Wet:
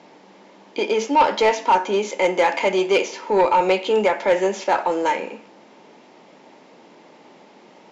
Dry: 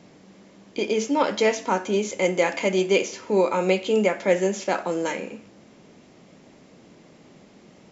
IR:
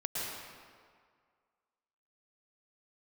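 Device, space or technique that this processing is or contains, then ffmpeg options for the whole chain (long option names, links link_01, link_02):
intercom: -af "highpass=320,lowpass=4900,equalizer=frequency=890:width_type=o:width=0.24:gain=10.5,asoftclip=type=tanh:threshold=-14dB,volume=5dB"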